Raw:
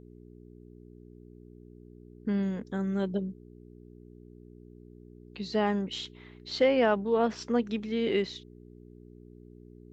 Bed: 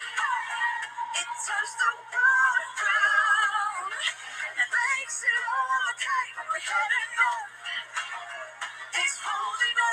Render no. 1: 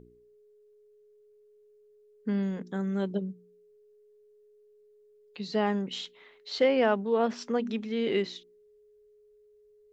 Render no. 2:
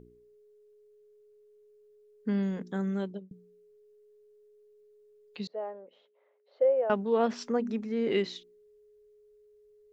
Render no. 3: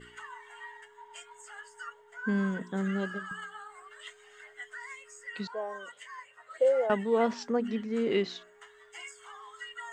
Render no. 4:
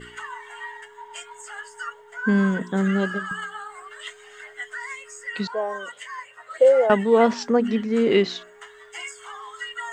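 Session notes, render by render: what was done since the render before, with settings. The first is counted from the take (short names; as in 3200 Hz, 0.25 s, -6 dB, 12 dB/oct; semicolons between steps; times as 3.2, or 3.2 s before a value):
de-hum 60 Hz, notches 6
2.89–3.31 fade out; 5.47–6.9 ladder band-pass 590 Hz, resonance 75%; 7.49–8.11 bell 3300 Hz -13.5 dB 0.89 oct
add bed -18.5 dB
gain +9.5 dB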